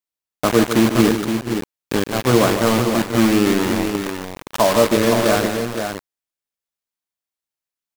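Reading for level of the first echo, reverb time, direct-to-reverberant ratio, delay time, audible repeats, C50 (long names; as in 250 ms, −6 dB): −9.0 dB, no reverb audible, no reverb audible, 151 ms, 4, no reverb audible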